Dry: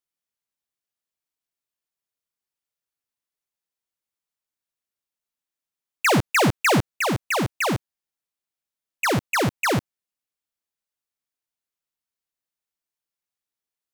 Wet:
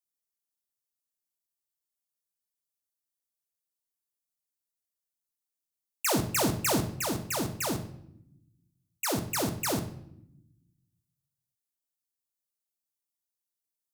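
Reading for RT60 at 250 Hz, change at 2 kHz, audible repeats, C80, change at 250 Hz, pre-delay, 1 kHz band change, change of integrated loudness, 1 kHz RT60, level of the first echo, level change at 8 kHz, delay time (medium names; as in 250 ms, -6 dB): 1.5 s, -13.5 dB, no echo, 14.5 dB, -6.5 dB, 3 ms, -10.5 dB, -7.5 dB, 0.65 s, no echo, -0.5 dB, no echo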